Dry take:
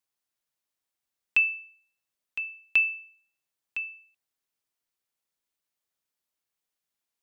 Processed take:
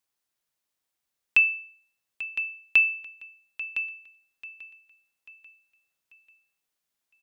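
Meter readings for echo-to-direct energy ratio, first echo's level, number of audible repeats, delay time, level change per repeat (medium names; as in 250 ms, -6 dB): -15.0 dB, -16.0 dB, 3, 840 ms, -7.5 dB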